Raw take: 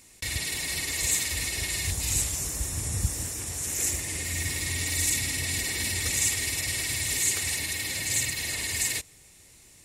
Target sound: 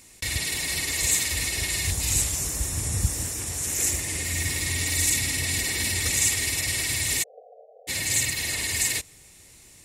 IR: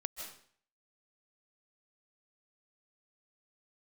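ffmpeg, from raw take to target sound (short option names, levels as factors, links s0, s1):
-filter_complex "[0:a]asplit=3[s0][s1][s2];[s0]afade=t=out:st=7.22:d=0.02[s3];[s1]asuperpass=centerf=580:order=20:qfactor=1.8,afade=t=in:st=7.22:d=0.02,afade=t=out:st=7.87:d=0.02[s4];[s2]afade=t=in:st=7.87:d=0.02[s5];[s3][s4][s5]amix=inputs=3:normalize=0,volume=1.41"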